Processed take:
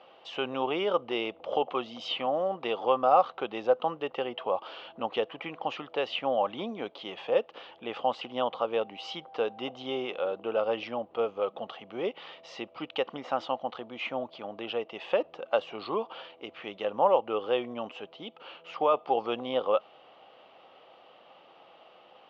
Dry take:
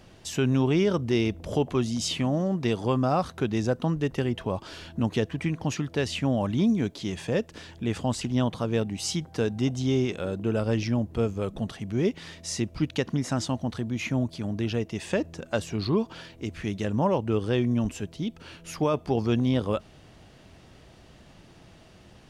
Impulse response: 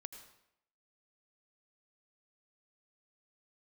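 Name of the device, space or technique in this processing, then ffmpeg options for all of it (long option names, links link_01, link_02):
phone earpiece: -af "highpass=490,equalizer=frequency=520:width_type=q:width=4:gain=10,equalizer=frequency=790:width_type=q:width=4:gain=10,equalizer=frequency=1200:width_type=q:width=4:gain=9,equalizer=frequency=1700:width_type=q:width=4:gain=-6,equalizer=frequency=3000:width_type=q:width=4:gain=7,lowpass=frequency=3500:width=0.5412,lowpass=frequency=3500:width=1.3066,volume=-3dB"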